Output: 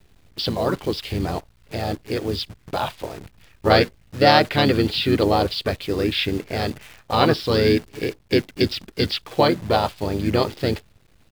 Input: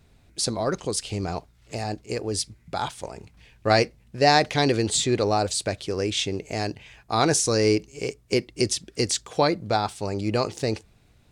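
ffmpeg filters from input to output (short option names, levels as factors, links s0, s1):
-filter_complex "[0:a]aresample=11025,aresample=44100,acrusher=bits=8:dc=4:mix=0:aa=0.000001,asplit=2[s0][s1];[s1]asetrate=33038,aresample=44100,atempo=1.33484,volume=0.631[s2];[s0][s2]amix=inputs=2:normalize=0,volume=1.33"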